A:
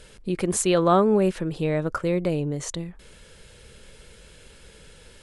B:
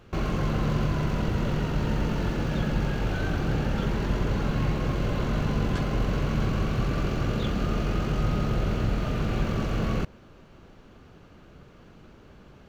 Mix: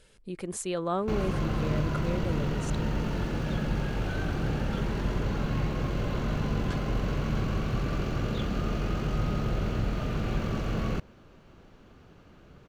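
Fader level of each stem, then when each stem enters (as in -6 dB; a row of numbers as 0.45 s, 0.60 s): -11.0 dB, -3.0 dB; 0.00 s, 0.95 s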